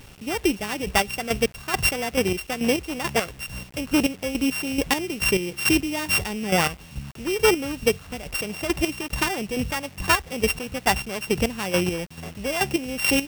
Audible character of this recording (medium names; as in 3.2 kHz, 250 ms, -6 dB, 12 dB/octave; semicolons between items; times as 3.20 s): a buzz of ramps at a fixed pitch in blocks of 16 samples; chopped level 2.3 Hz, depth 65%, duty 35%; a quantiser's noise floor 8-bit, dither none